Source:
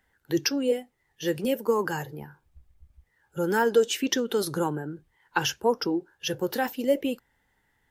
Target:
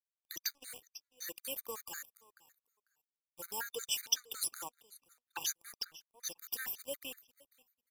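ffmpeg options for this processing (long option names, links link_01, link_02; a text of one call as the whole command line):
ffmpeg -i in.wav -af "aderivative,acrusher=bits=6:mix=0:aa=0.5,aecho=1:1:495|990:0.0794|0.0135,afftfilt=real='re*gt(sin(2*PI*5.4*pts/sr)*(1-2*mod(floor(b*sr/1024/1200),2)),0)':imag='im*gt(sin(2*PI*5.4*pts/sr)*(1-2*mod(floor(b*sr/1024/1200),2)),0)':win_size=1024:overlap=0.75,volume=2dB" out.wav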